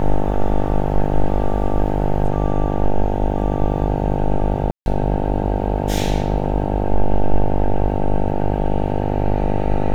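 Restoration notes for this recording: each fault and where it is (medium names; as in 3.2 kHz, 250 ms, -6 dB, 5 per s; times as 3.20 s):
buzz 50 Hz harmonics 18 -21 dBFS
4.71–4.86 s: dropout 151 ms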